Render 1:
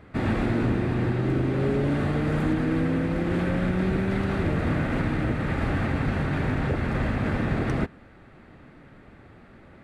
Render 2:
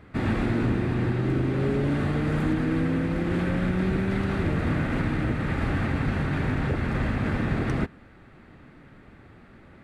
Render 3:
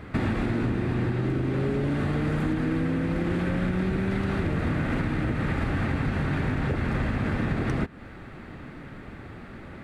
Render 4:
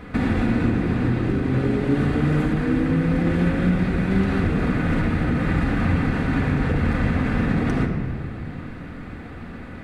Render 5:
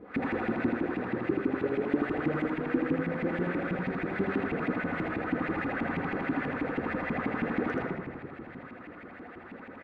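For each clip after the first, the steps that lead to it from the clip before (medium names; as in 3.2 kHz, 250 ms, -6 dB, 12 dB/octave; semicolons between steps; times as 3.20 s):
peaking EQ 610 Hz -3 dB 1 oct
compression 6:1, threshold -32 dBFS, peak gain reduction 11.5 dB; trim +8.5 dB
simulated room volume 3800 m³, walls mixed, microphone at 1.9 m; trim +2 dB
LFO band-pass saw up 6.2 Hz 280–2500 Hz; delay 80 ms -4 dB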